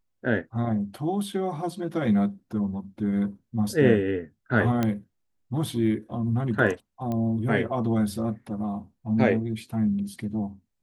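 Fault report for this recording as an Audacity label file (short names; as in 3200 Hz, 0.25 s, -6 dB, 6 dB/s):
4.830000	4.830000	pop -12 dBFS
7.120000	7.120000	pop -19 dBFS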